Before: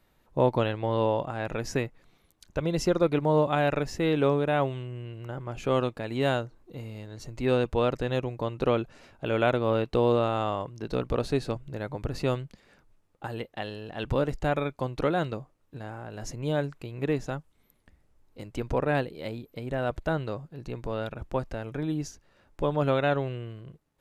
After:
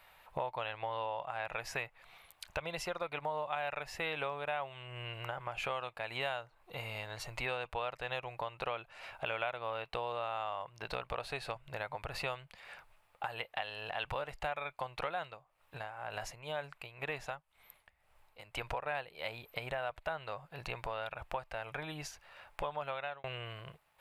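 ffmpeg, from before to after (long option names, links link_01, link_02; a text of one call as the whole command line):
ffmpeg -i in.wav -filter_complex "[0:a]asettb=1/sr,asplit=3[link_01][link_02][link_03];[link_01]atrim=end=15.194[link_04];[link_02]atrim=start=15.19:end=18.85,asetpts=PTS-STARTPTS,afade=type=in:duration=0.004:curve=qsin,afade=type=out:start_time=3.656:duration=0.004:curve=qsin,tremolo=f=2:d=0.8[link_05];[link_03]atrim=start=18.846[link_06];[link_04][link_05]acrossfade=duration=0.004:curve1=hsin:curve2=qsin[link_07];[link_07][link_06]acrossfade=duration=0.004:curve1=qsin:curve2=hsin,asplit=2[link_08][link_09];[link_08]atrim=end=23.24,asetpts=PTS-STARTPTS,afade=type=out:start_time=22.71:duration=0.53[link_10];[link_09]atrim=start=23.24,asetpts=PTS-STARTPTS,afade=type=in:duration=0.004:curve=hsin[link_11];[link_10][link_11]concat=n=2:v=0:a=1,lowshelf=frequency=510:width_type=q:width=1.5:gain=-12.5,acompressor=threshold=-46dB:ratio=4,equalizer=frequency=250:width_type=o:width=0.67:gain=-8,equalizer=frequency=2500:width_type=o:width=0.67:gain=6,equalizer=frequency=6300:width_type=o:width=0.67:gain=-8,volume=8dB" out.wav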